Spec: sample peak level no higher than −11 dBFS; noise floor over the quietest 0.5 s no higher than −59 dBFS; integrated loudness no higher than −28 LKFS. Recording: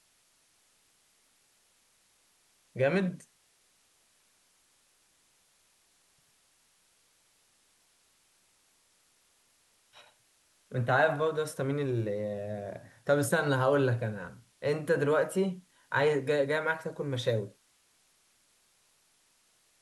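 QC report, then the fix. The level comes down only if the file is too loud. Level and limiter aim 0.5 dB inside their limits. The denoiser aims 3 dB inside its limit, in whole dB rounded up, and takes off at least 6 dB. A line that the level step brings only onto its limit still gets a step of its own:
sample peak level −13.0 dBFS: in spec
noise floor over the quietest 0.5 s −69 dBFS: in spec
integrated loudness −30.0 LKFS: in spec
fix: no processing needed

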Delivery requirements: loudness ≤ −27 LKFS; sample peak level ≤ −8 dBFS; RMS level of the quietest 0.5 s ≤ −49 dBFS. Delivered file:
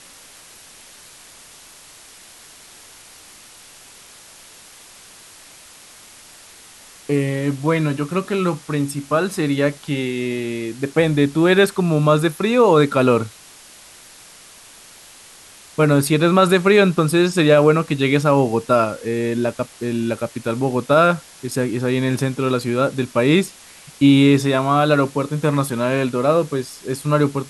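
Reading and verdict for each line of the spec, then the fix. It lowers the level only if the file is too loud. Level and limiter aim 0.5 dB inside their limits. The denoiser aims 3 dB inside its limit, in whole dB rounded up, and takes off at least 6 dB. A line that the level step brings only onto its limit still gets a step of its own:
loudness −18.0 LKFS: out of spec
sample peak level −3.5 dBFS: out of spec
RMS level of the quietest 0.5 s −44 dBFS: out of spec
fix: level −9.5 dB

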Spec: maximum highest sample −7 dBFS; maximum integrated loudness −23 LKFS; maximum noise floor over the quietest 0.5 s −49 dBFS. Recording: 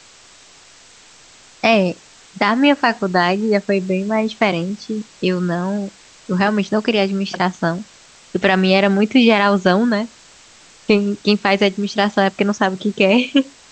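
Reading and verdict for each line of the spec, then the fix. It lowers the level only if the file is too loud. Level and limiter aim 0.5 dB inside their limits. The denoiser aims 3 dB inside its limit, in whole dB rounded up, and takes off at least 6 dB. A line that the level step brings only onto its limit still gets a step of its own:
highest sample −1.5 dBFS: out of spec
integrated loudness −17.0 LKFS: out of spec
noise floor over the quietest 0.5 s −46 dBFS: out of spec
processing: level −6.5 dB

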